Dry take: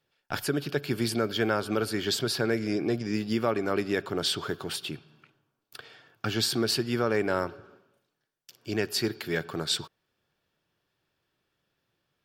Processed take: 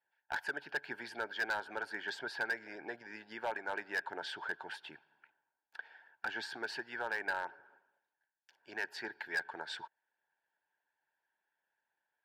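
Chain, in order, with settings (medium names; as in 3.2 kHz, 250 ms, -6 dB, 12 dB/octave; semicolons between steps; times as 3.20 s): harmonic-percussive split harmonic -8 dB; two resonant band-passes 1.2 kHz, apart 0.83 oct; hard clipper -34 dBFS, distortion -12 dB; trim +5 dB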